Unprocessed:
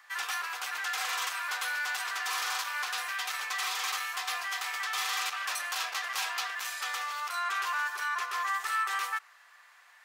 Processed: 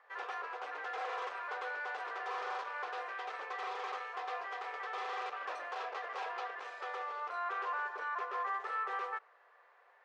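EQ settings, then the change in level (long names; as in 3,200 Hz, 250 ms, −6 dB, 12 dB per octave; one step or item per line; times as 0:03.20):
resonant band-pass 460 Hz, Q 3.4
high-frequency loss of the air 86 metres
+13.0 dB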